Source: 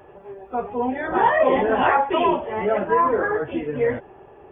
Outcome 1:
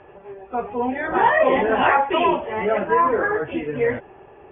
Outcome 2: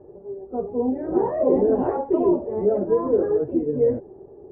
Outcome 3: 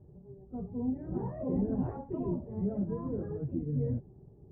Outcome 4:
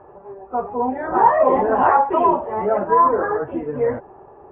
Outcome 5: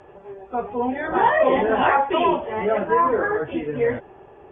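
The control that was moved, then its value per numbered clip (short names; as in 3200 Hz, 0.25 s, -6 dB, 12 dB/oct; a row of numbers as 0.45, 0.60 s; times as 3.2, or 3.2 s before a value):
synth low-pass, frequency: 2700, 400, 160, 1100, 7300 Hz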